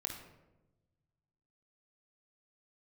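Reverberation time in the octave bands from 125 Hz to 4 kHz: 2.1 s, 1.4 s, 1.2 s, 0.90 s, 0.75 s, 0.55 s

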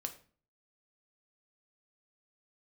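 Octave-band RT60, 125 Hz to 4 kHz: 0.60 s, 0.55 s, 0.45 s, 0.40 s, 0.40 s, 0.35 s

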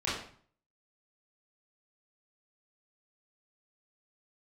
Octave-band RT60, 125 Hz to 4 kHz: 0.65 s, 0.55 s, 0.50 s, 0.50 s, 0.45 s, 0.40 s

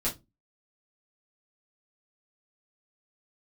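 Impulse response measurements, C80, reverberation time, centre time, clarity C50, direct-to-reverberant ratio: 24.0 dB, no single decay rate, 18 ms, 13.5 dB, -7.5 dB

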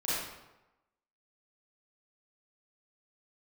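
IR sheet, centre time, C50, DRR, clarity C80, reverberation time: 91 ms, -3.5 dB, -10.5 dB, 0.5 dB, 1.0 s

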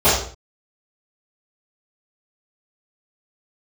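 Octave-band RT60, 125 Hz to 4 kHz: 0.60 s, 0.50 s, 0.45 s, 0.45 s, 0.40 s, no reading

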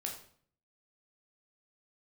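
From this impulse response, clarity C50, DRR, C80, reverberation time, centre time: 7.0 dB, 0.0 dB, 11.0 dB, 0.55 s, 24 ms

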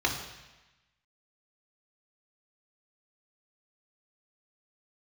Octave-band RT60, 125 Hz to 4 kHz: 1.2 s, 1.1 s, 1.0 s, 1.1 s, 1.2 s, 1.1 s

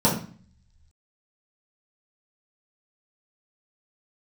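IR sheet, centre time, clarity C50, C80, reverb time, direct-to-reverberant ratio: 29 ms, 6.5 dB, 11.0 dB, 0.45 s, -8.0 dB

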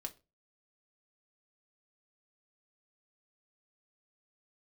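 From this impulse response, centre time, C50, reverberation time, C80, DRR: 5 ms, 19.0 dB, 0.30 s, 26.0 dB, 4.5 dB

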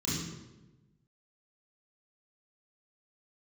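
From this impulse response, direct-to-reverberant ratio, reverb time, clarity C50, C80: -9.5 dB, 1.1 s, -1.5 dB, 2.5 dB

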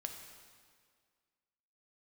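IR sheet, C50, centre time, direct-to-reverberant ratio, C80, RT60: 5.5 dB, 41 ms, 3.5 dB, 7.0 dB, 1.9 s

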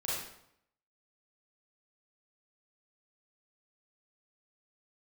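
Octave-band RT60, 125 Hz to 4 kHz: 0.80 s, 0.75 s, 0.75 s, 0.75 s, 0.65 s, 0.60 s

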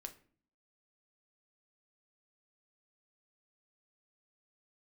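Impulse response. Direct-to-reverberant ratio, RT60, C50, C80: 6.0 dB, 0.45 s, 14.5 dB, 19.5 dB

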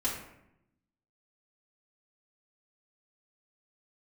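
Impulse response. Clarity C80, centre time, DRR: 7.5 dB, 38 ms, -7.5 dB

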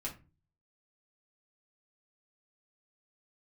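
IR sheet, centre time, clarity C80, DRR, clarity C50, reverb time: 15 ms, 18.5 dB, -4.0 dB, 11.5 dB, no single decay rate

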